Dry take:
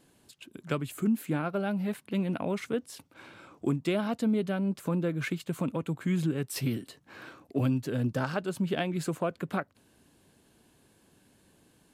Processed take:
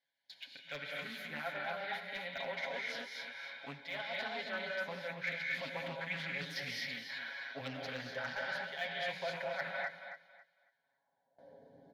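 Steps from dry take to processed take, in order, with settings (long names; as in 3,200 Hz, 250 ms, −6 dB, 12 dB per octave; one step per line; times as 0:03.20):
parametric band 530 Hz +6 dB 0.69 octaves
reverb whose tail is shaped and stops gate 280 ms rising, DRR 0.5 dB
band-pass filter sweep 2,500 Hz → 370 Hz, 0:10.45–0:11.73
reversed playback
downward compressor 6 to 1, threshold −45 dBFS, peak gain reduction 11.5 dB
reversed playback
hard clipping −38.5 dBFS, distortion −27 dB
comb filter 7.3 ms, depth 72%
noise gate with hold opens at −56 dBFS
phaser with its sweep stopped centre 1,800 Hz, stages 8
on a send: feedback echo with a high-pass in the loop 275 ms, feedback 24%, high-pass 160 Hz, level −9.5 dB
on the sum: highs frequency-modulated by the lows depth 0.25 ms
level +11 dB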